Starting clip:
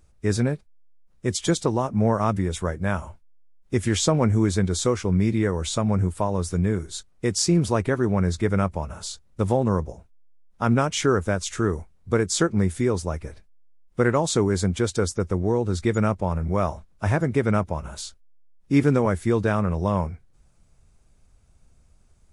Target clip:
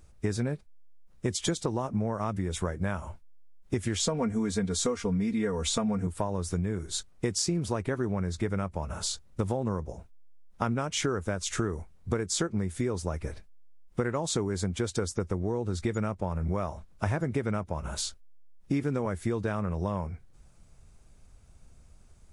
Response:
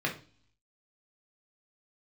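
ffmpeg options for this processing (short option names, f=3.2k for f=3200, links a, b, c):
-filter_complex "[0:a]asettb=1/sr,asplit=3[a][b][c];[a]atrim=end=3.994[d];[b]atrim=start=3.99:end=6.07,asetpts=PTS-STARTPTS,afade=t=in:d=0.004:c=qsin,afade=t=out:st=2.076:d=0.004:c=qsin,aecho=1:1:4.3:0.85,atrim=end_sample=91728[e];[c]atrim=start=6.066[f];[d][e]acrossfade=d=0.004:c1=hsin:c2=qsin[g];[g][f]acrossfade=d=0.004:c1=qsin:c2=hsin,acompressor=threshold=-28dB:ratio=10,volume=2.5dB"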